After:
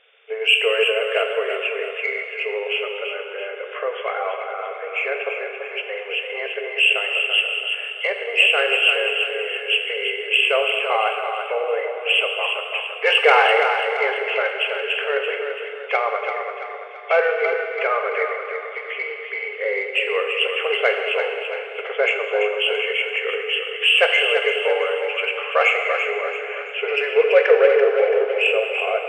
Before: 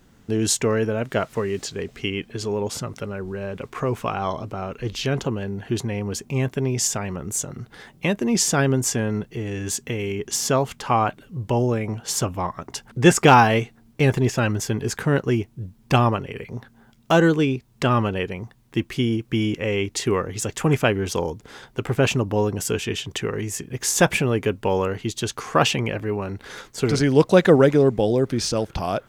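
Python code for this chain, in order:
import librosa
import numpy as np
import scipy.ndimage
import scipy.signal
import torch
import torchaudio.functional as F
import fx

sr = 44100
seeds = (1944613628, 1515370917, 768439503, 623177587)

p1 = fx.freq_compress(x, sr, knee_hz=2000.0, ratio=4.0)
p2 = fx.peak_eq(p1, sr, hz=940.0, db=-13.0, octaves=0.38)
p3 = 10.0 ** (-15.5 / 20.0) * np.tanh(p2 / 10.0 ** (-15.5 / 20.0))
p4 = p2 + F.gain(torch.from_numpy(p3), -6.0).numpy()
p5 = fx.brickwall_highpass(p4, sr, low_hz=410.0)
p6 = p5 + fx.echo_feedback(p5, sr, ms=336, feedback_pct=45, wet_db=-7.0, dry=0)
y = fx.rev_plate(p6, sr, seeds[0], rt60_s=2.3, hf_ratio=0.85, predelay_ms=0, drr_db=4.0)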